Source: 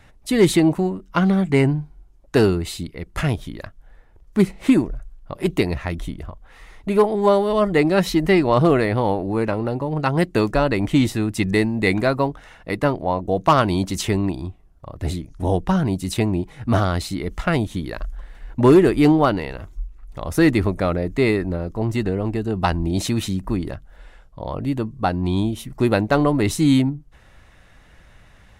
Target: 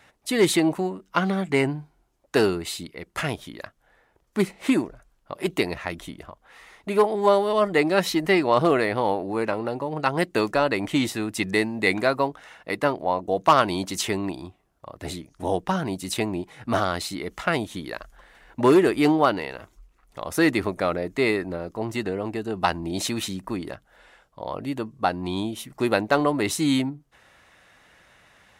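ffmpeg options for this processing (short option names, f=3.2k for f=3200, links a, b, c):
-af "highpass=f=460:p=1"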